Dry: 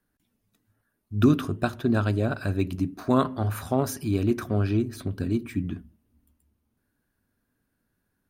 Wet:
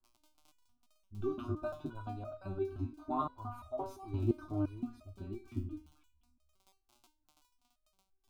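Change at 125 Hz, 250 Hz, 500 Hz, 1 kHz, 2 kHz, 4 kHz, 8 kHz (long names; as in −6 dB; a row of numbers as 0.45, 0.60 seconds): −14.5 dB, −15.0 dB, −11.0 dB, −9.0 dB, −21.0 dB, below −20 dB, below −20 dB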